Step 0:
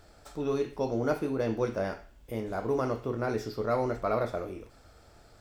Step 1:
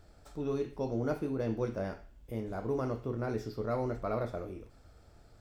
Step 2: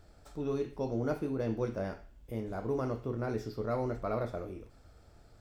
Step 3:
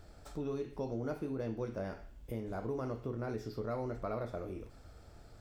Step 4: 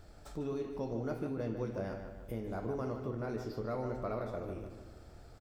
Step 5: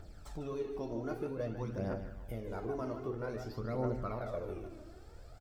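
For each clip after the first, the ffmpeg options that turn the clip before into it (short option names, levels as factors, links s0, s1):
-af "lowshelf=f=330:g=8,volume=0.422"
-af anull
-af "acompressor=threshold=0.00891:ratio=2.5,volume=1.41"
-filter_complex "[0:a]asplit=2[s0][s1];[s1]adelay=150,lowpass=f=3800:p=1,volume=0.422,asplit=2[s2][s3];[s3]adelay=150,lowpass=f=3800:p=1,volume=0.51,asplit=2[s4][s5];[s5]adelay=150,lowpass=f=3800:p=1,volume=0.51,asplit=2[s6][s7];[s7]adelay=150,lowpass=f=3800:p=1,volume=0.51,asplit=2[s8][s9];[s9]adelay=150,lowpass=f=3800:p=1,volume=0.51,asplit=2[s10][s11];[s11]adelay=150,lowpass=f=3800:p=1,volume=0.51[s12];[s0][s2][s4][s6][s8][s10][s12]amix=inputs=7:normalize=0"
-af "aphaser=in_gain=1:out_gain=1:delay=3.3:decay=0.52:speed=0.52:type=triangular,volume=0.841"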